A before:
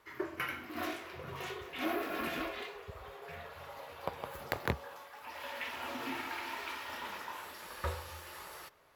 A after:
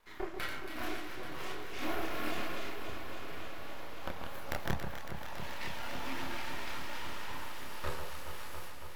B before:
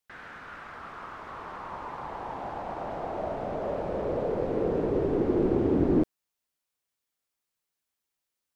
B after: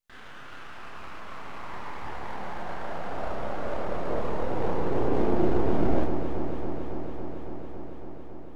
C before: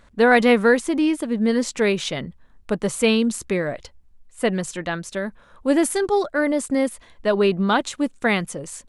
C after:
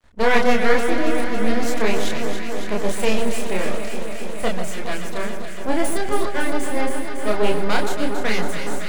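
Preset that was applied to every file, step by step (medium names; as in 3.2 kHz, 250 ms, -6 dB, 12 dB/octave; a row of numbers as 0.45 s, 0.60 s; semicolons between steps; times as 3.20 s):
half-wave rectifier; chorus voices 2, 0.48 Hz, delay 30 ms, depth 4 ms; echo whose repeats swap between lows and highs 139 ms, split 1.5 kHz, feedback 90%, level -7 dB; trim +5 dB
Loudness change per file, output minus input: -0.5 LU, -2.0 LU, -2.0 LU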